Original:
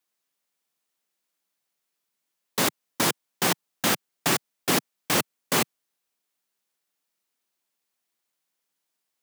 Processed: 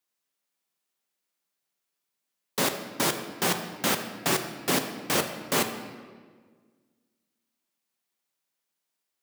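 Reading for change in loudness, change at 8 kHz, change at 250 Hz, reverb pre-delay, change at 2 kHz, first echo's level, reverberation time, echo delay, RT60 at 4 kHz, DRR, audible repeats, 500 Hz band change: -2.0 dB, -2.5 dB, -1.0 dB, 5 ms, -2.0 dB, no echo, 1.6 s, no echo, 1.1 s, 6.0 dB, no echo, 0.0 dB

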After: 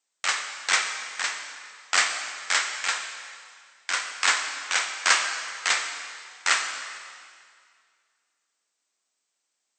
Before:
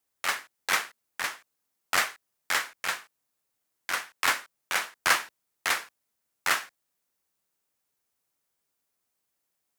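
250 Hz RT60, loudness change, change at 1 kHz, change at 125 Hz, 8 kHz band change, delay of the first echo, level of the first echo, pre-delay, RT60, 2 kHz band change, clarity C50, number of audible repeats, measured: 2.0 s, +3.5 dB, +2.0 dB, under -10 dB, +7.0 dB, no echo, no echo, 5 ms, 2.1 s, +3.5 dB, 6.0 dB, no echo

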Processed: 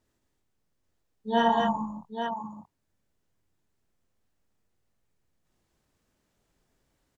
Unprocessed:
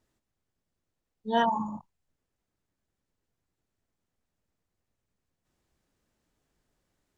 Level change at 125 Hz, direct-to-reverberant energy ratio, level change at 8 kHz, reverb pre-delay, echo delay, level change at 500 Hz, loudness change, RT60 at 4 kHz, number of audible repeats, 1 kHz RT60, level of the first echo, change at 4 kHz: +4.0 dB, no reverb, no reading, no reverb, 52 ms, +4.0 dB, +0.5 dB, no reverb, 4, no reverb, -4.5 dB, +4.0 dB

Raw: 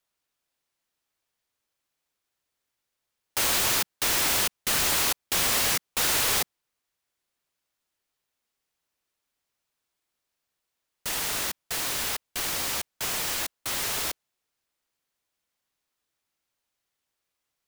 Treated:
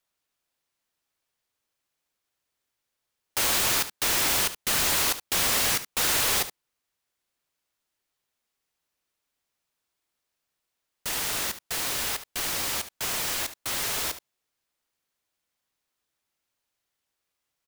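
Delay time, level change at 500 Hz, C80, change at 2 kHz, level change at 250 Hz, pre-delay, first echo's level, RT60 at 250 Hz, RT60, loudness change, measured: 72 ms, 0.0 dB, no reverb, 0.0 dB, +0.5 dB, no reverb, -13.0 dB, no reverb, no reverb, 0.0 dB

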